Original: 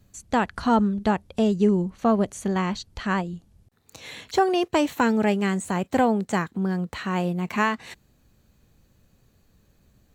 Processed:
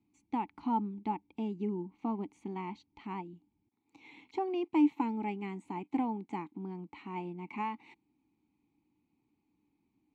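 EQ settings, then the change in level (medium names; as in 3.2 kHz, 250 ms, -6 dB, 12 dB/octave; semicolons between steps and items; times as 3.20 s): vowel filter u; 0.0 dB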